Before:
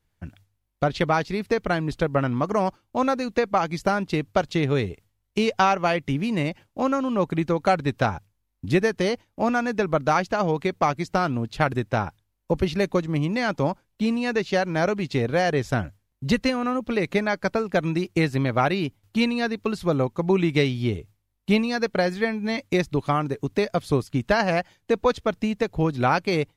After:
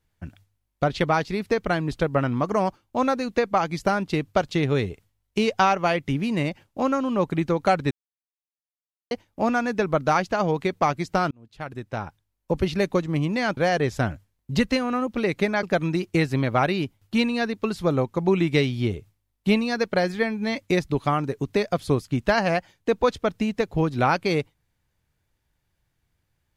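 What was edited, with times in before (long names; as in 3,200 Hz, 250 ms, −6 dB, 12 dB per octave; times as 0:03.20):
0:07.91–0:09.11: silence
0:11.31–0:12.70: fade in
0:13.57–0:15.30: remove
0:17.36–0:17.65: remove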